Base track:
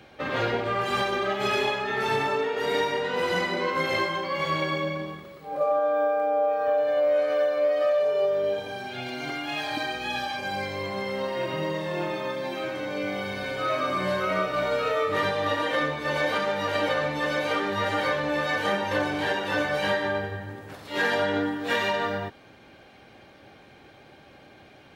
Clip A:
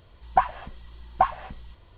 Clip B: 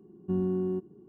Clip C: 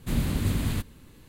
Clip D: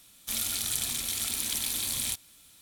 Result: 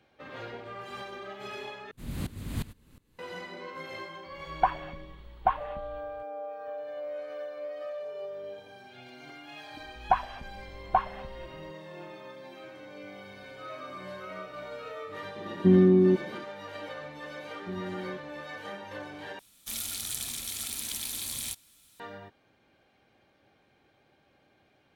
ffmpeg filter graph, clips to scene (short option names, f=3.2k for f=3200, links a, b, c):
-filter_complex "[1:a]asplit=2[a][b];[2:a]asplit=2[c][d];[0:a]volume=-15dB[e];[3:a]aeval=exprs='val(0)*pow(10,-20*if(lt(mod(-2.8*n/s,1),2*abs(-2.8)/1000),1-mod(-2.8*n/s,1)/(2*abs(-2.8)/1000),(mod(-2.8*n/s,1)-2*abs(-2.8)/1000)/(1-2*abs(-2.8)/1000))/20)':c=same[f];[c]equalizer=f=260:t=o:w=2.9:g=13[g];[e]asplit=3[h][i][j];[h]atrim=end=1.914[k];[f]atrim=end=1.28,asetpts=PTS-STARTPTS,volume=-2.5dB[l];[i]atrim=start=3.186:end=19.394[m];[4:a]atrim=end=2.61,asetpts=PTS-STARTPTS,volume=-4.5dB[n];[j]atrim=start=21.996[o];[a]atrim=end=1.97,asetpts=PTS-STARTPTS,volume=-4.5dB,afade=t=in:d=0.004:c=hsin,afade=t=out:st=1.966:d=0.004:c=hsin,adelay=4260[p];[b]atrim=end=1.97,asetpts=PTS-STARTPTS,volume=-4dB,afade=t=in:d=0.004:c=hsin,afade=t=out:st=1.966:d=0.004:c=hsin,adelay=9740[q];[g]atrim=end=1.08,asetpts=PTS-STARTPTS,volume=-2dB,afade=t=in:d=0.004:c=hsin,afade=t=out:st=1.076:d=0.004:c=hsin,adelay=15360[r];[d]atrim=end=1.08,asetpts=PTS-STARTPTS,volume=-9dB,afade=t=in:d=0.004:c=hsin,afade=t=out:st=1.076:d=0.004:c=hsin,adelay=17380[s];[k][l]acrossfade=d=0.004:c1=hsin:c2=hsin[t];[t][m]acrossfade=d=0.004:c1=hsin:c2=hsin[u];[u][n]acrossfade=d=0.004:c1=hsin:c2=hsin[v];[v][o]acrossfade=d=0.004:c1=hsin:c2=hsin[w];[w][p][q][r][s]amix=inputs=5:normalize=0"